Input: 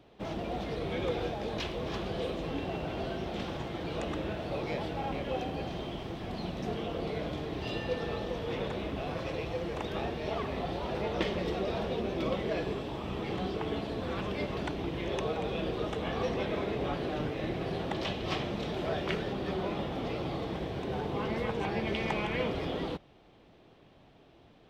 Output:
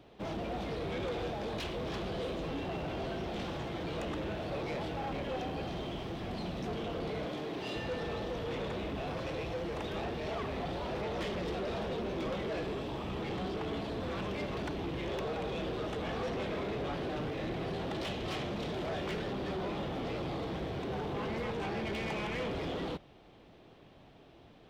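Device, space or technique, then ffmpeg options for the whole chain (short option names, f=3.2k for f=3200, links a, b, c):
saturation between pre-emphasis and de-emphasis: -filter_complex "[0:a]asettb=1/sr,asplit=3[a][b][c];[a]atrim=end=7.254[d];[b]atrim=start=7.25:end=7.76,asetpts=PTS-STARTPTS,afade=t=in:d=0.004:c=qsin,afade=t=out:st=0.506:d=0.004:c=qsin,highpass=180[e];[c]atrim=start=7.756[f];[d][e]acrossfade=d=0.004:c1=hsin:c2=qsin[g];[g][f]acrossfade=d=0.004:c1=qsin:c2=hsin,highshelf=f=4.3k:g=9,asoftclip=type=tanh:threshold=-33.5dB,highshelf=f=4.3k:g=-9,volume=1.5dB"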